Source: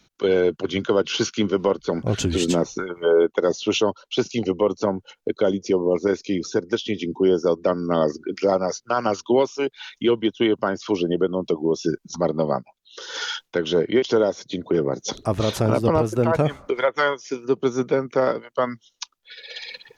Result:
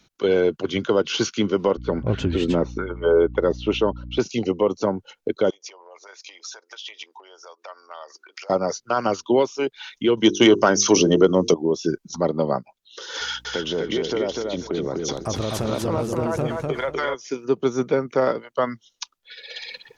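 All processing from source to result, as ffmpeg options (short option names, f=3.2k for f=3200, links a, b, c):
-filter_complex "[0:a]asettb=1/sr,asplit=3[a][b][c];[a]atrim=end=1.774[d];[b]atrim=start=1.77:end=4.2,asetpts=PTS-STARTPTS,afade=t=in:d=0.004:c=qsin,afade=t=out:st=2.426:d=0.004:c=qsin,lowpass=2.8k,aeval=exprs='val(0)+0.02*(sin(2*PI*60*n/s)+sin(2*PI*2*60*n/s)/2+sin(2*PI*3*60*n/s)/3+sin(2*PI*4*60*n/s)/4+sin(2*PI*5*60*n/s)/5)':c=same,bandreject=f=710:w=10[e];[c]atrim=start=4.196[f];[d][e]acrossfade=d=0.004:c1=hsin:c2=qsin[g];[g][f]acrossfade=d=0.004:c1=qsin:c2=hsin,asettb=1/sr,asplit=3[h][i][j];[h]atrim=end=5.504[k];[i]atrim=start=5.5:end=8.5,asetpts=PTS-STARTPTS,afade=t=in:d=0.004:c=qsin,afade=t=out:st=2.996:d=0.004:c=qsin,acompressor=threshold=-29dB:ratio=4:attack=3.2:release=140:knee=1:detection=peak,highpass=f=750:w=0.5412,highpass=f=750:w=1.3066[l];[j]atrim=start=8.496[m];[k][l]acrossfade=d=0.004:c1=hsin:c2=qsin[n];[n][m]acrossfade=d=0.004:c1=qsin:c2=hsin,asettb=1/sr,asplit=3[o][p][q];[o]atrim=end=10.174[r];[p]atrim=start=10.17:end=11.54,asetpts=PTS-STARTPTS,afade=t=in:d=0.004:c=qsin,afade=t=out:st=1.366:d=0.004:c=qsin,bandreject=f=50:t=h:w=6,bandreject=f=100:t=h:w=6,bandreject=f=150:t=h:w=6,bandreject=f=200:t=h:w=6,bandreject=f=250:t=h:w=6,bandreject=f=300:t=h:w=6,bandreject=f=350:t=h:w=6,bandreject=f=400:t=h:w=6,bandreject=f=450:t=h:w=6,acontrast=81,lowpass=f=6.1k:t=q:w=12[s];[q]atrim=start=11.536[t];[r][s]acrossfade=d=0.004:c1=hsin:c2=qsin[u];[u][t]acrossfade=d=0.004:c1=qsin:c2=hsin,asettb=1/sr,asplit=3[v][w][x];[v]atrim=end=13.204[y];[w]atrim=start=13.2:end=17.15,asetpts=PTS-STARTPTS,afade=t=in:d=0.004:c=qsin,afade=t=out:st=3.946:d=0.004:c=qsin,aeval=exprs='val(0)+0.00282*(sin(2*PI*60*n/s)+sin(2*PI*2*60*n/s)/2+sin(2*PI*3*60*n/s)/3+sin(2*PI*4*60*n/s)/4+sin(2*PI*5*60*n/s)/5)':c=same,acompressor=threshold=-22dB:ratio=3:attack=3.2:release=140:knee=1:detection=peak,aecho=1:1:248|496|744:0.708|0.149|0.0312,atrim=end_sample=174195[z];[x]atrim=start=17.146[aa];[y][z]acrossfade=d=0.004:c1=hsin:c2=qsin[ab];[ab][aa]acrossfade=d=0.004:c1=qsin:c2=hsin"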